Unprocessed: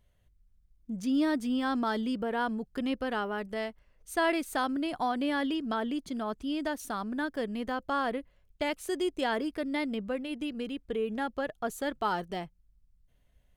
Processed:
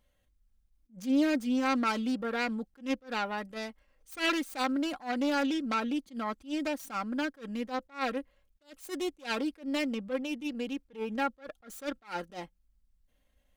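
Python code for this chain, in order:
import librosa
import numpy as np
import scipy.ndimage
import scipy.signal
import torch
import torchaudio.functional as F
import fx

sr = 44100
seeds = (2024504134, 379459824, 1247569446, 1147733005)

y = fx.self_delay(x, sr, depth_ms=0.26)
y = fx.low_shelf(y, sr, hz=170.0, db=-8.0)
y = y + 0.57 * np.pad(y, (int(3.7 * sr / 1000.0), 0))[:len(y)]
y = fx.dynamic_eq(y, sr, hz=1400.0, q=7.7, threshold_db=-52.0, ratio=4.0, max_db=6)
y = fx.attack_slew(y, sr, db_per_s=230.0)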